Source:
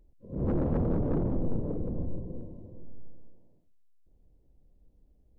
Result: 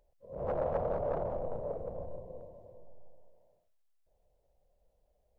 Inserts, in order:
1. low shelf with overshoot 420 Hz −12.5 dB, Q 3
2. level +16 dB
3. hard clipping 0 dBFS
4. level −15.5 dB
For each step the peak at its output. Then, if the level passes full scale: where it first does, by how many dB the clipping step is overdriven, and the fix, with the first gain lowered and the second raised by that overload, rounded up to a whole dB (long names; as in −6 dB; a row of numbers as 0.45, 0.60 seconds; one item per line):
−21.0, −5.0, −5.0, −20.5 dBFS
no step passes full scale